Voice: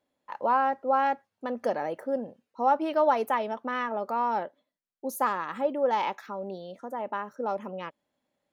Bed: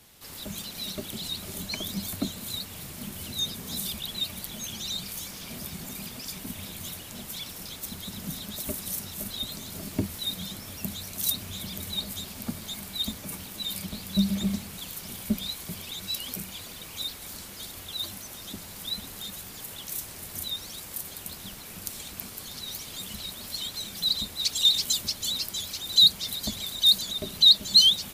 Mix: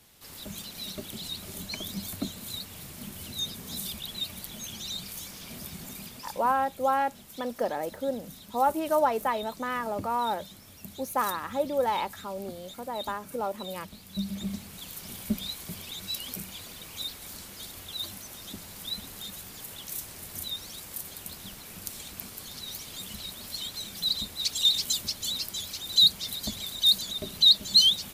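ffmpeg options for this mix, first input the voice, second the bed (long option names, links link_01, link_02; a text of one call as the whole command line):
ffmpeg -i stem1.wav -i stem2.wav -filter_complex "[0:a]adelay=5950,volume=-1dB[link_01];[1:a]volume=5.5dB,afade=type=out:start_time=5.89:duration=0.74:silence=0.421697,afade=type=in:start_time=14.05:duration=1.06:silence=0.375837[link_02];[link_01][link_02]amix=inputs=2:normalize=0" out.wav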